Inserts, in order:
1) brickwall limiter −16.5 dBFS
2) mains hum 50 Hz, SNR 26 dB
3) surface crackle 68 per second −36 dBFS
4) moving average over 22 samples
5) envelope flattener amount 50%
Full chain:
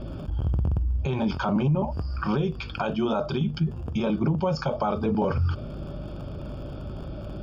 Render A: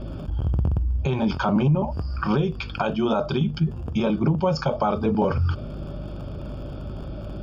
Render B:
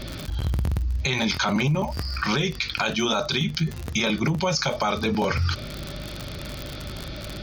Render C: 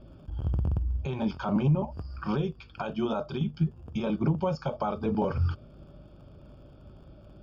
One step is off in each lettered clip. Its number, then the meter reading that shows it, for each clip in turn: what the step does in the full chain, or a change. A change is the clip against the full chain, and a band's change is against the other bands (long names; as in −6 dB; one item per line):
1, change in crest factor +2.0 dB
4, 4 kHz band +14.5 dB
5, change in momentary loudness spread −4 LU